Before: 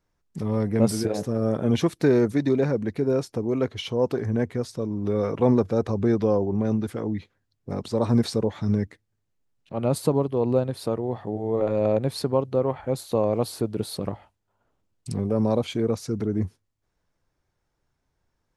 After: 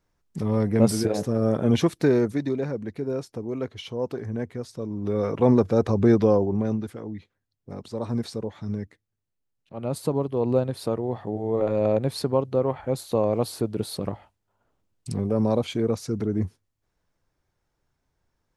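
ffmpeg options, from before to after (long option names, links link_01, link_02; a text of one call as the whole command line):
ffmpeg -i in.wav -af "volume=18dB,afade=type=out:start_time=1.78:duration=0.79:silence=0.446684,afade=type=in:start_time=4.63:duration=1.49:silence=0.334965,afade=type=out:start_time=6.12:duration=0.86:silence=0.281838,afade=type=in:start_time=9.75:duration=0.81:silence=0.446684" out.wav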